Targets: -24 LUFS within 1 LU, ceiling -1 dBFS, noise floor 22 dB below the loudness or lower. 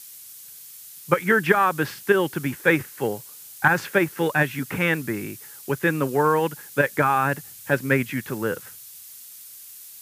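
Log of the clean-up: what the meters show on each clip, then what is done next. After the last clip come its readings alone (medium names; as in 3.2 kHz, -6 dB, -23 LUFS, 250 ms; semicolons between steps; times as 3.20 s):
noise floor -43 dBFS; noise floor target -45 dBFS; loudness -23.0 LUFS; peak level -2.5 dBFS; loudness target -24.0 LUFS
-> noise print and reduce 6 dB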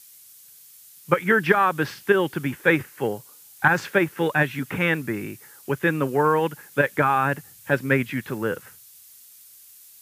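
noise floor -49 dBFS; loudness -23.0 LUFS; peak level -2.5 dBFS; loudness target -24.0 LUFS
-> trim -1 dB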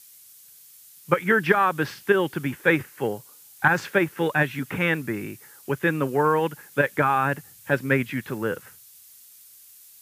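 loudness -24.0 LUFS; peak level -3.5 dBFS; noise floor -50 dBFS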